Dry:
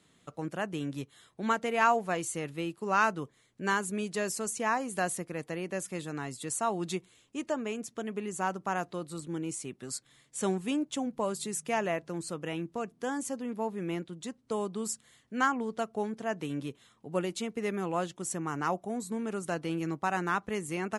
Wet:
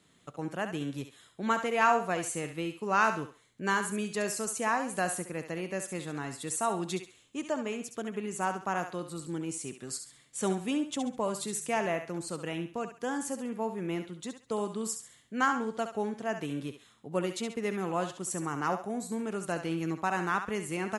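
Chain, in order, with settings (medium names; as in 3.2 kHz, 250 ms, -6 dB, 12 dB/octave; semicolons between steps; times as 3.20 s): thinning echo 68 ms, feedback 34%, high-pass 590 Hz, level -7.5 dB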